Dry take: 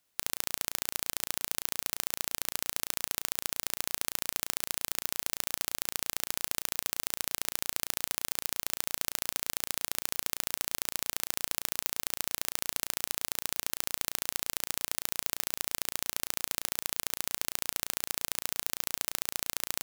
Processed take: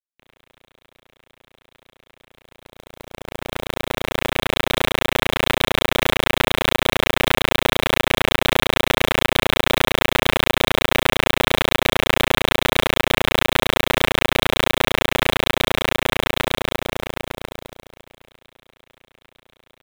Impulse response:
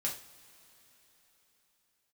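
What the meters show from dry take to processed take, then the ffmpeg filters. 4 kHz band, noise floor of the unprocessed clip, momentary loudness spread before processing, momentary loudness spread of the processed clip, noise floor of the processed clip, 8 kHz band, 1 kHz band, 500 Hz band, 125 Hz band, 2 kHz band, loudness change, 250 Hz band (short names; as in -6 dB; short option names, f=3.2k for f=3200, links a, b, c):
+15.5 dB, -76 dBFS, 1 LU, 8 LU, under -85 dBFS, 0.0 dB, +20.0 dB, +25.5 dB, +24.5 dB, +19.0 dB, +13.0 dB, +23.0 dB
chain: -filter_complex "[0:a]acrossover=split=560|1800[a][b][c];[c]asoftclip=type=hard:threshold=-16dB[d];[a][b][d]amix=inputs=3:normalize=0,asplit=2[e][f];[f]adelay=27,volume=-12dB[g];[e][g]amix=inputs=2:normalize=0,aresample=8000,aeval=exprs='0.0944*sin(PI/2*3.98*val(0)/0.0944)':c=same,aresample=44100,aecho=1:1:106:0.237,acrusher=bits=5:mix=0:aa=0.000001,dynaudnorm=f=450:g=17:m=12dB,agate=range=-25dB:threshold=-25dB:ratio=16:detection=peak,volume=3dB"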